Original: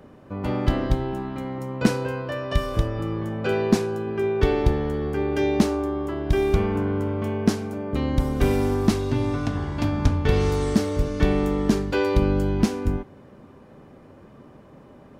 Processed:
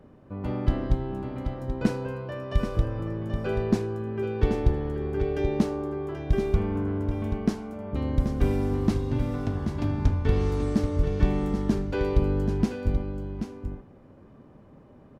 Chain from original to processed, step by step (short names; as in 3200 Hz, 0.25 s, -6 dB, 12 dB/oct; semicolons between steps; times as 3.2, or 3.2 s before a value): tilt -1.5 dB/oct; echo 0.782 s -8 dB; gain -7.5 dB